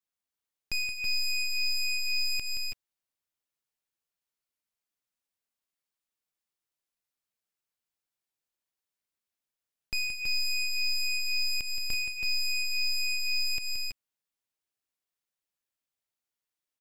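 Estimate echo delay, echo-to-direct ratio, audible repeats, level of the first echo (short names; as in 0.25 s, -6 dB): 0.174 s, -3.0 dB, 2, -8.5 dB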